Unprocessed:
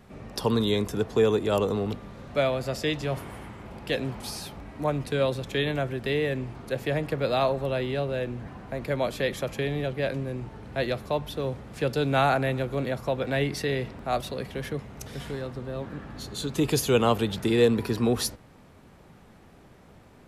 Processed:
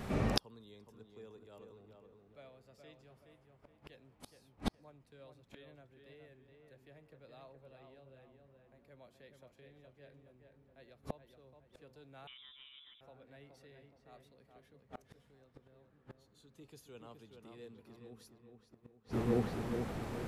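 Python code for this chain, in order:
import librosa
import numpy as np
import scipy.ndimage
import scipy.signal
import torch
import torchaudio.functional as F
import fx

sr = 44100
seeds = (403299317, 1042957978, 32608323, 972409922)

y = fx.echo_filtered(x, sr, ms=421, feedback_pct=45, hz=2400.0, wet_db=-5.0)
y = fx.gate_flip(y, sr, shuts_db=-28.0, range_db=-42)
y = fx.freq_invert(y, sr, carrier_hz=3700, at=(12.27, 13.01))
y = y * 10.0 ** (9.5 / 20.0)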